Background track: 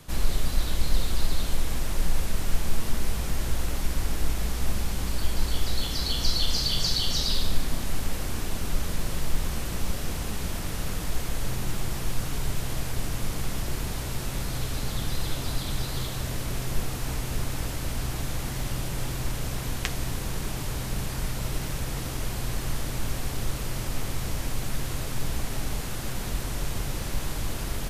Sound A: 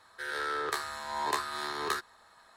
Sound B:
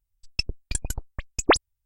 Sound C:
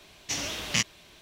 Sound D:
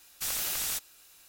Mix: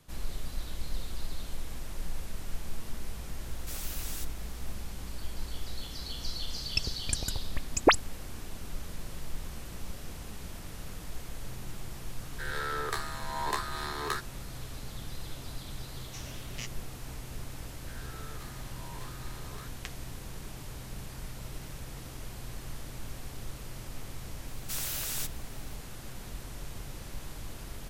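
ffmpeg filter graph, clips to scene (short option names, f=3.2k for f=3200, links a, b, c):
-filter_complex "[4:a]asplit=2[a][b];[1:a]asplit=2[c][d];[0:a]volume=-11.5dB[e];[2:a]highpass=43[f];[d]asoftclip=type=hard:threshold=-29.5dB[g];[a]atrim=end=1.28,asetpts=PTS-STARTPTS,volume=-9.5dB,afade=t=in:d=0.004:c=hsin,afade=t=out:st=1.276:d=0.004:c=hsin,adelay=3460[h];[f]atrim=end=1.85,asetpts=PTS-STARTPTS,volume=-2.5dB,afade=t=in:d=0.004:c=hsin,afade=t=out:st=1.846:d=0.004:c=hsin,adelay=6380[i];[c]atrim=end=2.56,asetpts=PTS-STARTPTS,volume=-1.5dB,afade=t=in:d=0.004:c=hsin,afade=t=out:st=2.556:d=0.004:c=hsin,adelay=538020S[j];[3:a]atrim=end=1.21,asetpts=PTS-STARTPTS,volume=-16dB,afade=t=in:d=0.004:c=hsin,afade=t=out:st=1.206:d=0.004:c=hsin,adelay=15840[k];[g]atrim=end=2.56,asetpts=PTS-STARTPTS,volume=-15.5dB,afade=t=in:d=0.004:c=hsin,afade=t=out:st=2.556:d=0.004:c=hsin,adelay=17680[l];[b]atrim=end=1.28,asetpts=PTS-STARTPTS,volume=-3.5dB,afade=t=in:d=0.004:c=hsin,afade=t=out:st=1.276:d=0.004:c=hsin,adelay=24480[m];[e][h][i][j][k][l][m]amix=inputs=7:normalize=0"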